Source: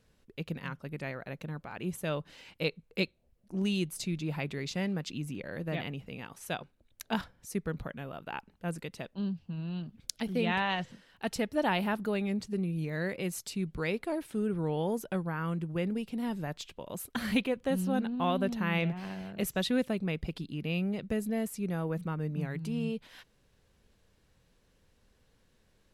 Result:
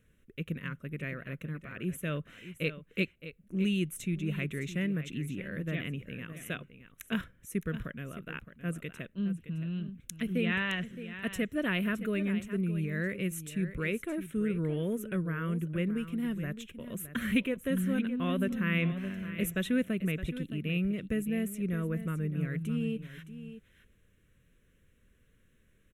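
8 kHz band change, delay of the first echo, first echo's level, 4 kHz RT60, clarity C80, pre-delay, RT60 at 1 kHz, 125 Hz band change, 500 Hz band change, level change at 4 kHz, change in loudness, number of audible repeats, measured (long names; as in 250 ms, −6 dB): −1.5 dB, 616 ms, −12.5 dB, no reverb audible, no reverb audible, no reverb audible, no reverb audible, +2.0 dB, −2.5 dB, −3.0 dB, +0.5 dB, 1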